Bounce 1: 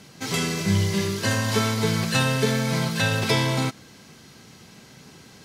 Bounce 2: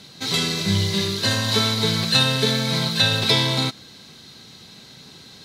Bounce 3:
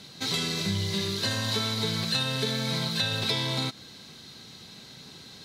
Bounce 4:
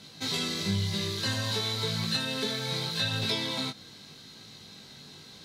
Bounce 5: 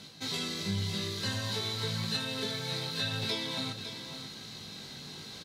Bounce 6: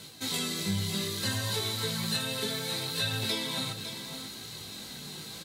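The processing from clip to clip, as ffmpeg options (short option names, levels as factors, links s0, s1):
-af "equalizer=f=3900:w=3.5:g=15"
-af "acompressor=threshold=0.0631:ratio=3,volume=0.75"
-af "flanger=delay=18.5:depth=2.2:speed=0.9,volume=1.12"
-af "areverse,acompressor=mode=upward:threshold=0.0251:ratio=2.5,areverse,aecho=1:1:555:0.335,volume=0.631"
-filter_complex "[0:a]flanger=delay=1.9:depth=4.5:regen=-47:speed=0.66:shape=triangular,acrossover=split=3100[s0][s1];[s1]aexciter=amount=2.4:drive=7.8:freq=7500[s2];[s0][s2]amix=inputs=2:normalize=0,volume=2"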